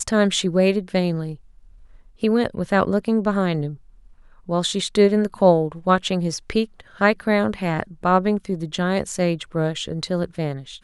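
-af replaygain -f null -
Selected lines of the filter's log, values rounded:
track_gain = +0.9 dB
track_peak = 0.464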